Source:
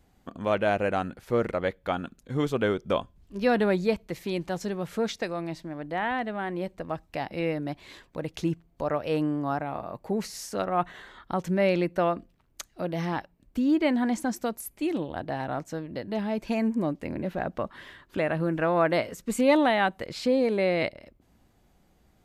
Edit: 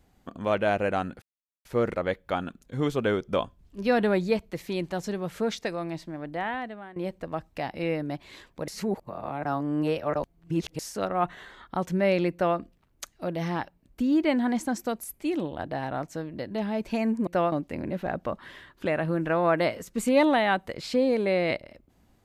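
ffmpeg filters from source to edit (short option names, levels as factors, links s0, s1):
-filter_complex "[0:a]asplit=7[s0][s1][s2][s3][s4][s5][s6];[s0]atrim=end=1.22,asetpts=PTS-STARTPTS,afade=t=out:st=1.216:d=0.004:c=hsin,apad=pad_dur=0.43[s7];[s1]atrim=start=1.22:end=6.53,asetpts=PTS-STARTPTS,afade=t=in:d=0.004:c=hsin,afade=t=out:st=4.65:d=0.66:silence=0.133352[s8];[s2]atrim=start=6.53:end=8.252,asetpts=PTS-STARTPTS,afade=t=in:d=0.004:c=hsin:silence=0.133352[s9];[s3]atrim=start=8.248:end=10.362,asetpts=PTS-STARTPTS,areverse[s10];[s4]atrim=start=10.358:end=16.842[s11];[s5]atrim=start=11.898:end=12.152[s12];[s6]atrim=start=16.838[s13];[s7][s8][s9]concat=n=3:v=0:a=1[s14];[s14][s10]acrossfade=d=0.004:c1=hsin:c2=hsin[s15];[s15][s11]acrossfade=d=0.004:c1=hsin:c2=hsin[s16];[s16][s12]acrossfade=d=0.004:c1=hsin:c2=hsin[s17];[s17][s13]acrossfade=d=0.004:c1=hsin:c2=hsin"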